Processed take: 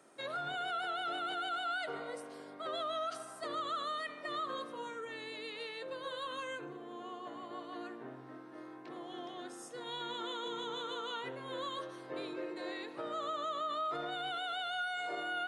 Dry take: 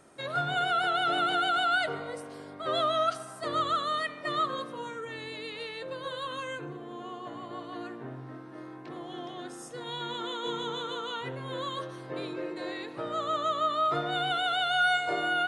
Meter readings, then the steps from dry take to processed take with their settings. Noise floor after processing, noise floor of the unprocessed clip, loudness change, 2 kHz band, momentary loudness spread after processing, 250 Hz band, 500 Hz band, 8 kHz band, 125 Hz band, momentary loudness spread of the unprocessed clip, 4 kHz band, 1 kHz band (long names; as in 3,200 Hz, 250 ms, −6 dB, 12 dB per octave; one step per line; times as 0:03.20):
−50 dBFS, −44 dBFS, −9.0 dB, −9.5 dB, 10 LU, −7.0 dB, −7.5 dB, −6.5 dB, −15.5 dB, 15 LU, −8.5 dB, −9.0 dB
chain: high-pass filter 230 Hz 12 dB per octave
brickwall limiter −26 dBFS, peak gain reduction 10 dB
level −4.5 dB